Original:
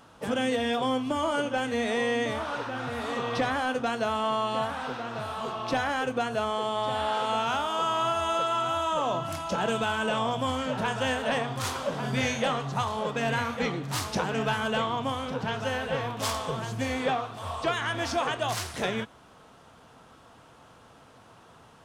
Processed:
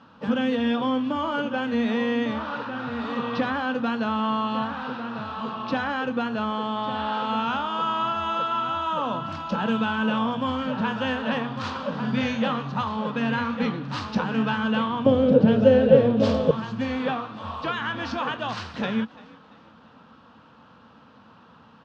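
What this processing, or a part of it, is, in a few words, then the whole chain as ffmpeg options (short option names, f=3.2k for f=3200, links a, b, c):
frequency-shifting delay pedal into a guitar cabinet: -filter_complex "[0:a]asplit=4[a][b][c][d];[b]adelay=341,afreqshift=52,volume=-21dB[e];[c]adelay=682,afreqshift=104,volume=-28.3dB[f];[d]adelay=1023,afreqshift=156,volume=-35.7dB[g];[a][e][f][g]amix=inputs=4:normalize=0,highpass=89,equalizer=f=120:t=q:w=4:g=-6,equalizer=f=220:t=q:w=4:g=8,equalizer=f=380:t=q:w=4:g=-9,equalizer=f=680:t=q:w=4:g=-9,equalizer=f=2.1k:t=q:w=4:g=-8,equalizer=f=3.4k:t=q:w=4:g=-4,lowpass=f=4.1k:w=0.5412,lowpass=f=4.1k:w=1.3066,asettb=1/sr,asplit=3[h][i][j];[h]atrim=end=15.064[k];[i]atrim=start=15.06:end=16.51,asetpts=PTS-STARTPTS,afade=t=in:d=0.004:c=qsin,afade=t=out:st=1.446:d=0.004:c=qsin,lowshelf=f=740:t=q:w=3:g=10[l];[j]atrim=start=16.506[m];[k][l]acrossfade=d=0.004:c1=hsin:c2=qsin[n];[n][m]acrossfade=d=0.004:c1=qsin:c2=hsin,volume=3.5dB"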